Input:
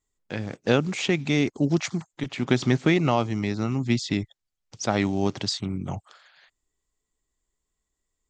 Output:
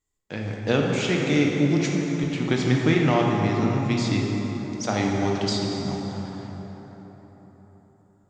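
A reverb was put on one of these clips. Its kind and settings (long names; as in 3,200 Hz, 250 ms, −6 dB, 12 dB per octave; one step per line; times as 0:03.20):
dense smooth reverb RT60 4.5 s, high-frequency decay 0.5×, DRR −1.5 dB
level −2 dB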